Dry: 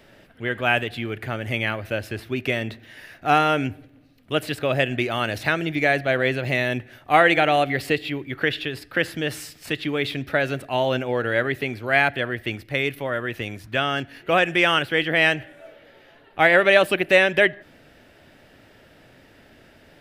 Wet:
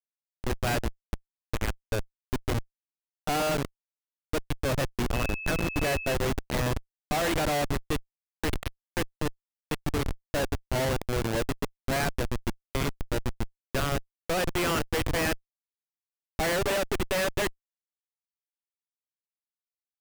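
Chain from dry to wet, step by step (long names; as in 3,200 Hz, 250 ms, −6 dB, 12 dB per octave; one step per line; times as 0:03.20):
comparator with hysteresis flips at −20.5 dBFS
0:05.13–0:06.13: steady tone 2,600 Hz −33 dBFS
level −2.5 dB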